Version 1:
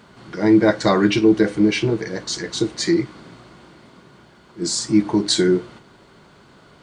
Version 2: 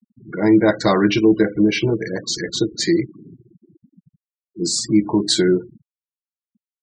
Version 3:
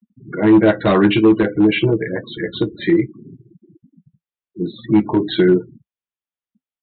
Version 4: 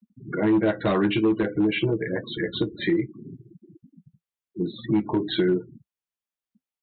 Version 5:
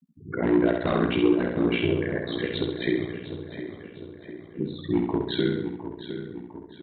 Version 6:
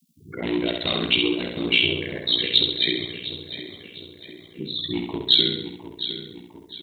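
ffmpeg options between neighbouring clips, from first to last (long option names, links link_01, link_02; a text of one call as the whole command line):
ffmpeg -i in.wav -filter_complex "[0:a]afftfilt=real='re*gte(hypot(re,im),0.0355)':imag='im*gte(hypot(re,im),0.0355)':win_size=1024:overlap=0.75,asplit=2[link_01][link_02];[link_02]acompressor=threshold=-25dB:ratio=6,volume=-3dB[link_03];[link_01][link_03]amix=inputs=2:normalize=0,volume=-1dB" out.wav
ffmpeg -i in.wav -af "aresample=8000,volume=9.5dB,asoftclip=hard,volume=-9.5dB,aresample=44100,flanger=delay=5.8:depth=5.1:regen=-43:speed=0.55:shape=triangular,volume=6.5dB" out.wav
ffmpeg -i in.wav -af "acompressor=threshold=-23dB:ratio=2,volume=-1.5dB" out.wav
ffmpeg -i in.wav -filter_complex "[0:a]asplit=2[link_01][link_02];[link_02]adelay=705,lowpass=frequency=3000:poles=1,volume=-10dB,asplit=2[link_03][link_04];[link_04]adelay=705,lowpass=frequency=3000:poles=1,volume=0.55,asplit=2[link_05][link_06];[link_06]adelay=705,lowpass=frequency=3000:poles=1,volume=0.55,asplit=2[link_07][link_08];[link_08]adelay=705,lowpass=frequency=3000:poles=1,volume=0.55,asplit=2[link_09][link_10];[link_10]adelay=705,lowpass=frequency=3000:poles=1,volume=0.55,asplit=2[link_11][link_12];[link_12]adelay=705,lowpass=frequency=3000:poles=1,volume=0.55[link_13];[link_03][link_05][link_07][link_09][link_11][link_13]amix=inputs=6:normalize=0[link_14];[link_01][link_14]amix=inputs=2:normalize=0,aeval=exprs='val(0)*sin(2*PI*30*n/s)':channel_layout=same,asplit=2[link_15][link_16];[link_16]aecho=0:1:67|134|201|268|335|402:0.596|0.292|0.143|0.0701|0.0343|0.0168[link_17];[link_15][link_17]amix=inputs=2:normalize=0" out.wav
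ffmpeg -i in.wav -af "aexciter=amount=14.1:drive=4.5:freq=2500,volume=-4dB" out.wav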